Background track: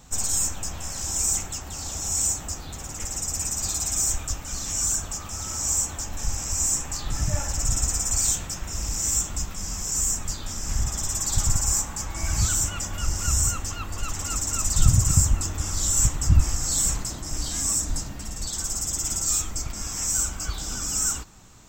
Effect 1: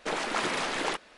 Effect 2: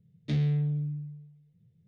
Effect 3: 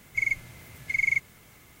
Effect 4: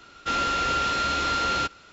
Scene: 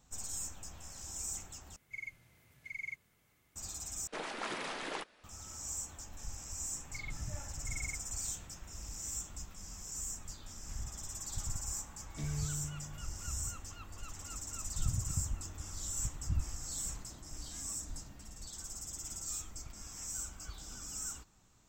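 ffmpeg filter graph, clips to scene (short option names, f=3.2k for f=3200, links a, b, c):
-filter_complex "[3:a]asplit=2[a][b];[0:a]volume=-16.5dB[c];[b]aemphasis=mode=reproduction:type=riaa[d];[c]asplit=3[e][f][g];[e]atrim=end=1.764[h];[a]atrim=end=1.8,asetpts=PTS-STARTPTS,volume=-18dB[i];[f]atrim=start=3.556:end=4.074[j];[1:a]atrim=end=1.17,asetpts=PTS-STARTPTS,volume=-10dB[k];[g]atrim=start=5.236[l];[d]atrim=end=1.8,asetpts=PTS-STARTPTS,volume=-17.5dB,afade=t=in:d=0.004:c=hsin,afade=t=out:st=1.796:d=0.004:c=hsin,adelay=6770[m];[2:a]atrim=end=1.87,asetpts=PTS-STARTPTS,volume=-13dB,afade=t=in:d=0.004:c=hsin,afade=t=out:st=1.866:d=0.004:c=hsin,adelay=11890[n];[h][i]acrossfade=d=0.004:c1=hsin:c2=hsin[o];[o][j]acrossfade=d=0.004:c1=hsin:c2=hsin[p];[p][k]acrossfade=d=0.004:c1=hsin:c2=hsin[q];[q][l]acrossfade=d=0.004:c1=hsin:c2=hsin[r];[r][m][n]amix=inputs=3:normalize=0"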